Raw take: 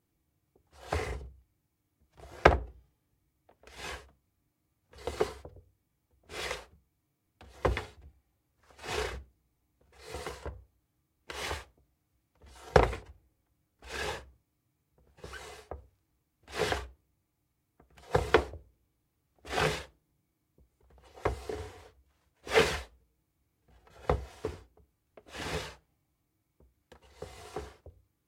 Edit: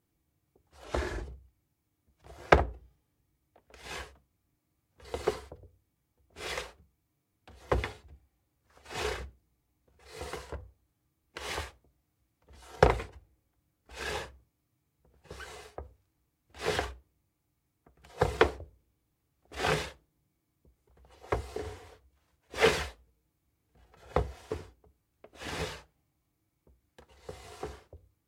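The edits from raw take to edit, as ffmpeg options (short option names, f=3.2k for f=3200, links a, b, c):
-filter_complex "[0:a]asplit=3[a][b][c];[a]atrim=end=0.844[d];[b]atrim=start=0.84:end=1.17,asetpts=PTS-STARTPTS,asetrate=36603,aresample=44100[e];[c]atrim=start=1.166[f];[d][e]acrossfade=d=0.004:c1=hsin:c2=hsin[g];[g][f]acrossfade=d=0.004:c1=hsin:c2=hsin"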